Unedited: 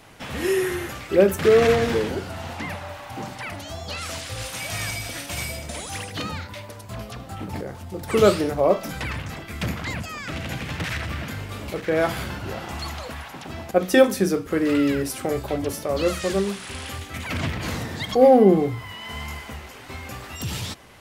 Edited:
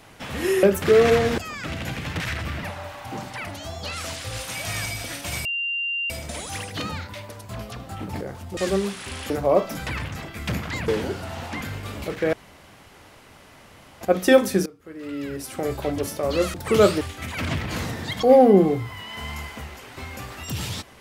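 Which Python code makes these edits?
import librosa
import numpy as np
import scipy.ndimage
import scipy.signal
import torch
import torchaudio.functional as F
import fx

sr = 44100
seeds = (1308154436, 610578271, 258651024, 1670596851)

y = fx.edit(x, sr, fx.cut(start_s=0.63, length_s=0.57),
    fx.swap(start_s=1.95, length_s=0.73, other_s=10.02, other_length_s=1.25),
    fx.insert_tone(at_s=5.5, length_s=0.65, hz=2780.0, db=-23.5),
    fx.swap(start_s=7.97, length_s=0.47, other_s=16.2, other_length_s=0.73),
    fx.room_tone_fill(start_s=11.99, length_s=1.68),
    fx.fade_in_from(start_s=14.32, length_s=1.09, curve='qua', floor_db=-21.5), tone=tone)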